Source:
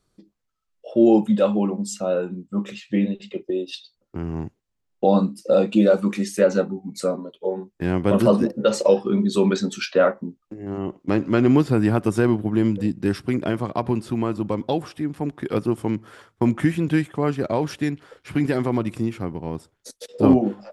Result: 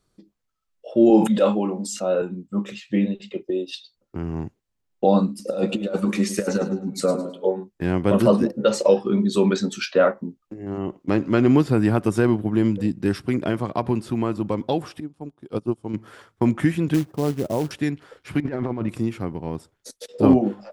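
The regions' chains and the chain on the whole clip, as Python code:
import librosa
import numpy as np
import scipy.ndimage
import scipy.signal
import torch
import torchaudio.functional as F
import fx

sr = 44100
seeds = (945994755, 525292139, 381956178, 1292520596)

y = fx.chain(x, sr, fx.highpass(hz=190.0, slope=12),
    fx.doubler(ms=27.0, db=-11.0),
    fx.sustainer(db_per_s=89.0), at=(1.1, 2.22))
y = fx.chain(y, sr, fx.over_compress(threshold_db=-20.0, ratio=-0.5),
    fx.echo_feedback(ms=106, feedback_pct=30, wet_db=-11.5), at=(5.29, 7.52))
y = fx.chain(y, sr, fx.peak_eq(hz=1900.0, db=-11.5, octaves=0.72),
    fx.resample_bad(factor=2, down='none', up='filtered'),
    fx.upward_expand(threshold_db=-30.0, expansion=2.5), at=(15.0, 15.94))
y = fx.chain(y, sr, fx.bessel_lowpass(hz=730.0, order=4),
    fx.quant_float(bits=2), at=(16.94, 17.71))
y = fx.chain(y, sr, fx.dead_time(dead_ms=0.061),
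    fx.lowpass(hz=2200.0, slope=12),
    fx.over_compress(threshold_db=-25.0, ratio=-0.5), at=(18.4, 18.89))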